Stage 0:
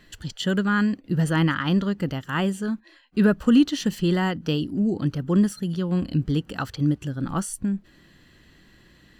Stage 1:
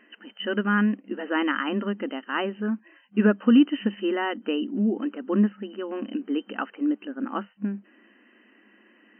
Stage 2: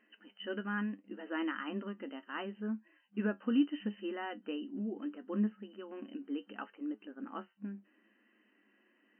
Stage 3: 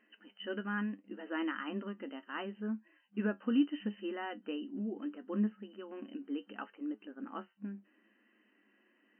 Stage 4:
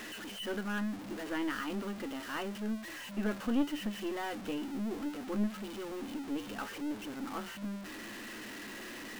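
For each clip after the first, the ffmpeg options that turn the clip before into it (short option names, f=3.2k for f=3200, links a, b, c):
-af "afftfilt=real='re*between(b*sr/4096,200,3100)':imag='im*between(b*sr/4096,200,3100)':win_size=4096:overlap=0.75"
-af "flanger=delay=9.2:depth=1.7:regen=59:speed=0.73:shape=sinusoidal,volume=-9dB"
-af anull
-af "aeval=exprs='val(0)+0.5*0.0126*sgn(val(0))':c=same,aeval=exprs='(tanh(20*val(0)+0.6)-tanh(0.6))/20':c=same,volume=2dB"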